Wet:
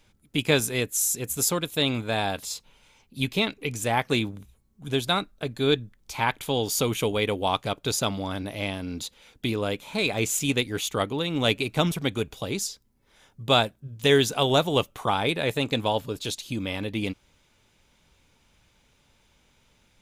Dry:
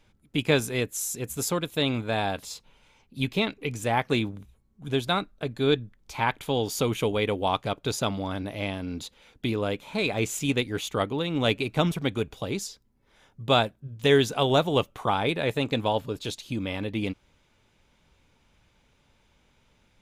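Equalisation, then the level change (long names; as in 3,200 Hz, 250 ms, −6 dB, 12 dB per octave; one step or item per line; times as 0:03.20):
high-shelf EQ 4,100 Hz +8 dB
0.0 dB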